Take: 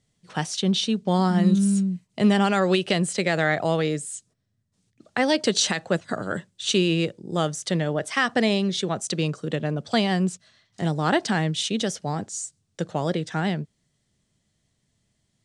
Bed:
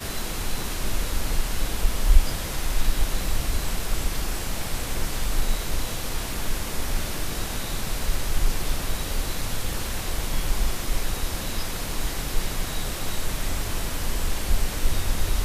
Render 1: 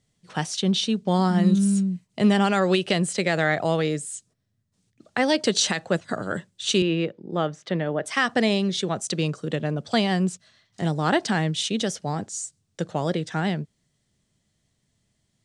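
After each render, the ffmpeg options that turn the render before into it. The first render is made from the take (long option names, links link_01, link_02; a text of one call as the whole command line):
ffmpeg -i in.wav -filter_complex "[0:a]asettb=1/sr,asplit=3[link_01][link_02][link_03];[link_01]atrim=end=6.824[link_04];[link_02]atrim=start=6.82:end=8.06,asetpts=PTS-STARTPTS,afade=type=in:duration=0.004:curve=qsin,afade=type=out:start_time=1.236:duration=0.004:curve=qsin,highpass=160,lowpass=2600[link_05];[link_03]atrim=start=8.056[link_06];[link_04][link_05]acrossfade=duration=0.004:curve1=hsin:curve2=qsin[link_07];[link_07][link_06]acrossfade=duration=0.004:curve1=qsin:curve2=hsin" out.wav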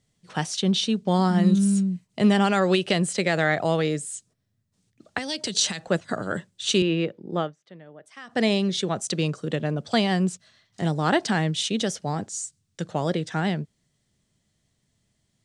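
ffmpeg -i in.wav -filter_complex "[0:a]asettb=1/sr,asplit=3[link_01][link_02][link_03];[link_01]atrim=end=5.184[link_04];[link_02]atrim=start=5.18:end=5.88,asetpts=PTS-STARTPTS,afade=type=in:duration=0.004:curve=qsin,afade=type=out:start_time=0.696:duration=0.004:curve=qsin,acrossover=split=160|3000[link_05][link_06][link_07];[link_06]acompressor=threshold=-32dB:ratio=6:attack=3.2:release=140:knee=2.83:detection=peak[link_08];[link_05][link_08][link_07]amix=inputs=3:normalize=0[link_09];[link_03]atrim=start=5.876[link_10];[link_04][link_09]acrossfade=duration=0.004:curve1=hsin:curve2=qsin[link_11];[link_11][link_10]acrossfade=duration=0.004:curve1=qsin:curve2=hsin,asettb=1/sr,asplit=3[link_12][link_13][link_14];[link_12]atrim=end=12.454[link_15];[link_13]atrim=start=12.45:end=12.89,asetpts=PTS-STARTPTS,afade=type=in:duration=0.004:curve=qsin,afade=type=out:start_time=0.436:duration=0.004:curve=qsin,equalizer=frequency=580:width_type=o:width=1.8:gain=-6.5[link_16];[link_14]atrim=start=12.886[link_17];[link_15][link_16]acrossfade=duration=0.004:curve1=hsin:curve2=qsin[link_18];[link_18][link_17]acrossfade=duration=0.004:curve1=qsin:curve2=hsin,asplit=3[link_19][link_20][link_21];[link_19]atrim=end=7.54,asetpts=PTS-STARTPTS,afade=type=out:start_time=7.38:duration=0.16:silence=0.1[link_22];[link_20]atrim=start=7.54:end=8.27,asetpts=PTS-STARTPTS,volume=-20dB[link_23];[link_21]atrim=start=8.27,asetpts=PTS-STARTPTS,afade=type=in:duration=0.16:silence=0.1[link_24];[link_22][link_23][link_24]concat=n=3:v=0:a=1" out.wav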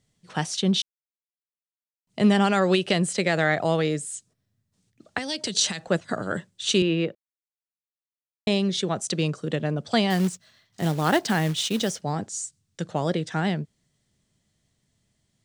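ffmpeg -i in.wav -filter_complex "[0:a]asettb=1/sr,asplit=3[link_01][link_02][link_03];[link_01]atrim=end=10.104[link_04];[link_02]atrim=start=10.1:end=12.02,asetpts=PTS-STARTPTS,afade=type=in:duration=0.004:curve=qsin,afade=type=out:start_time=1.916:duration=0.004:curve=qsin,acrusher=bits=4:mode=log:mix=0:aa=0.000001[link_05];[link_03]atrim=start=12.016[link_06];[link_04][link_05]acrossfade=duration=0.004:curve1=hsin:curve2=qsin[link_07];[link_07][link_06]acrossfade=duration=0.004:curve1=qsin:curve2=hsin,asplit=5[link_08][link_09][link_10][link_11][link_12];[link_08]atrim=end=0.82,asetpts=PTS-STARTPTS,afade=type=out:start_time=0.816:duration=0.004:curve=hsin[link_13];[link_09]atrim=start=0.82:end=2.07,asetpts=PTS-STARTPTS,volume=0[link_14];[link_10]atrim=start=2.07:end=7.15,asetpts=PTS-STARTPTS,afade=type=in:duration=0.004:curve=hsin,afade=type=out:start_time=5.076:duration=0.004:curve=hsin[link_15];[link_11]atrim=start=7.15:end=8.47,asetpts=PTS-STARTPTS,volume=0[link_16];[link_12]atrim=start=8.47,asetpts=PTS-STARTPTS,afade=type=in:duration=0.004:curve=hsin[link_17];[link_13][link_14][link_15][link_16][link_17]concat=n=5:v=0:a=1" out.wav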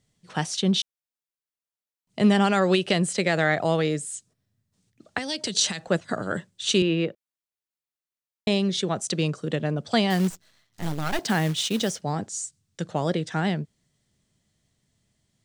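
ffmpeg -i in.wav -filter_complex "[0:a]asettb=1/sr,asplit=3[link_01][link_02][link_03];[link_01]atrim=end=10.304[link_04];[link_02]atrim=start=10.3:end=11.19,asetpts=PTS-STARTPTS,afade=type=in:duration=0.004:curve=qsin,afade=type=out:start_time=0.886:duration=0.004:curve=qsin,aeval=exprs='max(val(0),0)':channel_layout=same[link_05];[link_03]atrim=start=11.186[link_06];[link_04][link_05]acrossfade=duration=0.004:curve1=hsin:curve2=qsin[link_07];[link_07][link_06]acrossfade=duration=0.004:curve1=qsin:curve2=hsin" out.wav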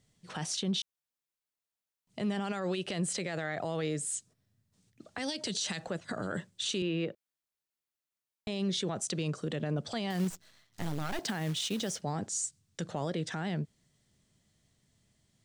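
ffmpeg -i in.wav -af "acompressor=threshold=-26dB:ratio=6,alimiter=level_in=0.5dB:limit=-24dB:level=0:latency=1:release=34,volume=-0.5dB" out.wav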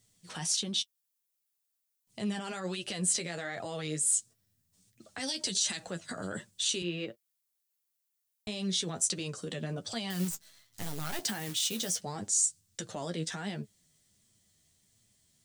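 ffmpeg -i in.wav -af "crystalizer=i=3:c=0,flanger=delay=8.4:depth=4.4:regen=26:speed=1.4:shape=triangular" out.wav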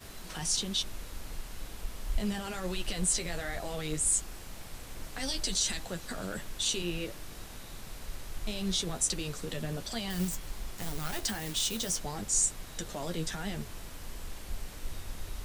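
ffmpeg -i in.wav -i bed.wav -filter_complex "[1:a]volume=-16dB[link_01];[0:a][link_01]amix=inputs=2:normalize=0" out.wav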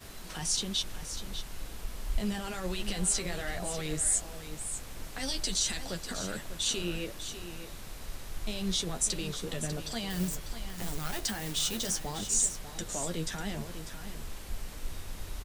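ffmpeg -i in.wav -af "aecho=1:1:596:0.299" out.wav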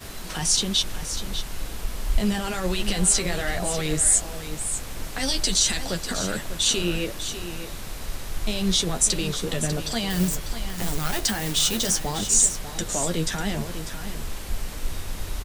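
ffmpeg -i in.wav -af "volume=9dB" out.wav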